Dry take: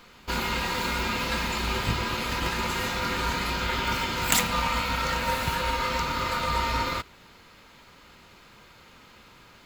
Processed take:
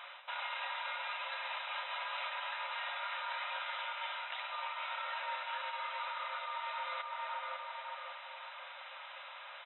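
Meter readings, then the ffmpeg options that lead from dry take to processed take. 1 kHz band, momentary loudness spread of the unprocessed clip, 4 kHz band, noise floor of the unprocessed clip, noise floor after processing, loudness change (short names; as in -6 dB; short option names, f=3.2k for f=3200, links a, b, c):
-10.0 dB, 4 LU, -12.0 dB, -53 dBFS, -50 dBFS, -13.0 dB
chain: -filter_complex "[0:a]asplit=2[a][b];[b]adelay=557,lowpass=f=2.1k:p=1,volume=-13dB,asplit=2[c][d];[d]adelay=557,lowpass=f=2.1k:p=1,volume=0.43,asplit=2[e][f];[f]adelay=557,lowpass=f=2.1k:p=1,volume=0.43,asplit=2[g][h];[h]adelay=557,lowpass=f=2.1k:p=1,volume=0.43[i];[a][c][e][g][i]amix=inputs=5:normalize=0,areverse,acompressor=threshold=-35dB:ratio=16,areverse,afftfilt=real='re*between(b*sr/4096,520,4000)':imag='im*between(b*sr/4096,520,4000)':win_size=4096:overlap=0.75,alimiter=level_in=11dB:limit=-24dB:level=0:latency=1:release=422,volume=-11dB,volume=5dB"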